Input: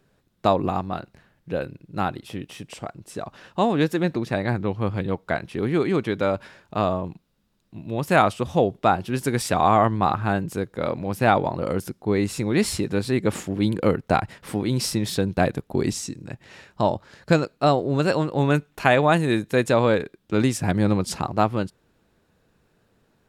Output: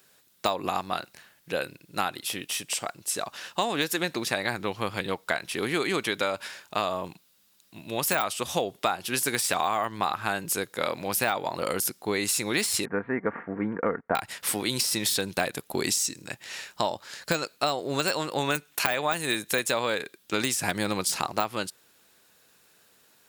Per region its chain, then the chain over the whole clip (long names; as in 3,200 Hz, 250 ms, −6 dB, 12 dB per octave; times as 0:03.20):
0:12.85–0:14.15: mu-law and A-law mismatch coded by A + Butterworth low-pass 1,900 Hz 48 dB per octave + comb filter 4.3 ms, depth 32%
whole clip: de-essing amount 65%; spectral tilt +4.5 dB per octave; downward compressor 6 to 1, threshold −25 dBFS; level +2.5 dB